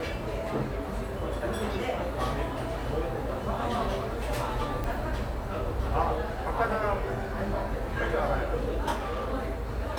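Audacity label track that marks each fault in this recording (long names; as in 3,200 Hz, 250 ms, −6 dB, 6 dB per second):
4.840000	4.840000	click
8.920000	9.340000	clipping −28.5 dBFS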